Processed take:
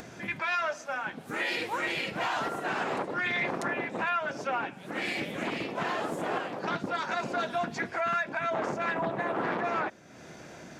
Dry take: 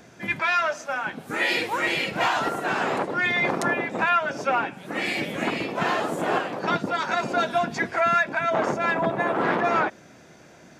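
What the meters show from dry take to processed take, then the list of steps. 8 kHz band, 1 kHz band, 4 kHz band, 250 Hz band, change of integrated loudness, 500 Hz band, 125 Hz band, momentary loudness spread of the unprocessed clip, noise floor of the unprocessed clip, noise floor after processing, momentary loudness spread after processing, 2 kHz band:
-7.0 dB, -7.0 dB, -7.0 dB, -6.5 dB, -7.0 dB, -7.0 dB, -6.5 dB, 5 LU, -50 dBFS, -48 dBFS, 6 LU, -7.0 dB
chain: peak limiter -16 dBFS, peak gain reduction 3.5 dB; upward compressor, threshold -31 dBFS; loudspeaker Doppler distortion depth 0.3 ms; trim -5.5 dB

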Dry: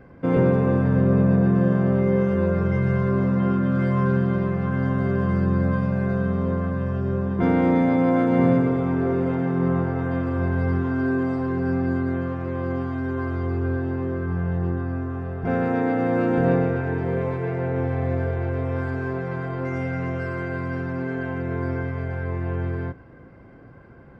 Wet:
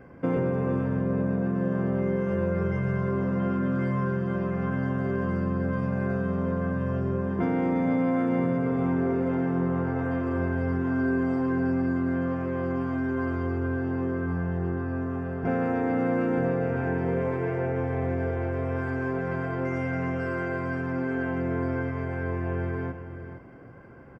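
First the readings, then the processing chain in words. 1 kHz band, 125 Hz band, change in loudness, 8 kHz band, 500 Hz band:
-3.5 dB, -6.0 dB, -4.5 dB, no reading, -4.0 dB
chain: peaking EQ 3.9 kHz -14 dB 0.23 oct; hum notches 50/100/150/200 Hz; compression, threshold -22 dBFS, peak gain reduction 8.5 dB; bass shelf 65 Hz -6.5 dB; on a send: delay 463 ms -11 dB

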